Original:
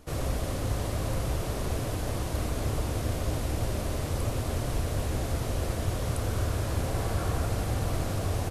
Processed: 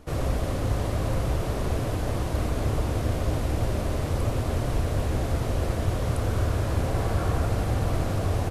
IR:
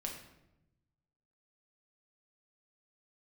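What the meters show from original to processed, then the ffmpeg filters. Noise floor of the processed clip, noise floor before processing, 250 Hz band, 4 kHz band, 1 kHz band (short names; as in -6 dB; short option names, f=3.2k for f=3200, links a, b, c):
-29 dBFS, -33 dBFS, +4.0 dB, 0.0 dB, +3.5 dB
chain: -af "highshelf=f=3.7k:g=-7.5,volume=4dB"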